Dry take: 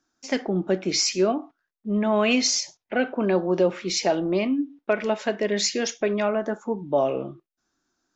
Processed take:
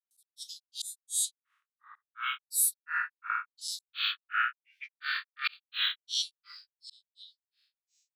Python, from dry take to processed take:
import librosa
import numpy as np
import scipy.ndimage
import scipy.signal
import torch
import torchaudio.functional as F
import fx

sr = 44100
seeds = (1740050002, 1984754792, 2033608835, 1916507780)

p1 = fx.spec_dilate(x, sr, span_ms=240)
p2 = scipy.signal.sosfilt(scipy.signal.butter(12, 2100.0, 'highpass', fs=sr, output='sos'), p1)
p3 = fx.over_compress(p2, sr, threshold_db=-25.0, ratio=-1.0)
p4 = p2 + (p3 * librosa.db_to_amplitude(2.0))
p5 = fx.auto_swell(p4, sr, attack_ms=632.0)
p6 = fx.granulator(p5, sr, seeds[0], grain_ms=247.0, per_s=2.8, spray_ms=100.0, spread_st=12)
y = p6 * librosa.db_to_amplitude(-5.5)